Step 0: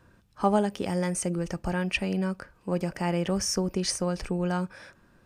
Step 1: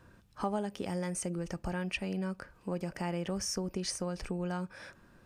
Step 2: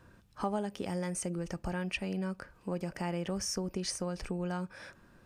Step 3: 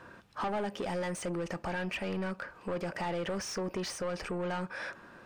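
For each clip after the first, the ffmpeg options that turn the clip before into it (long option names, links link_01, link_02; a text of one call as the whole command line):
ffmpeg -i in.wav -af "acompressor=threshold=-38dB:ratio=2" out.wav
ffmpeg -i in.wav -af anull out.wav
ffmpeg -i in.wav -filter_complex "[0:a]asplit=2[link_01][link_02];[link_02]highpass=frequency=720:poles=1,volume=24dB,asoftclip=type=tanh:threshold=-19dB[link_03];[link_01][link_03]amix=inputs=2:normalize=0,lowpass=frequency=1800:poles=1,volume=-6dB,asoftclip=type=tanh:threshold=-23dB,volume=-3.5dB" out.wav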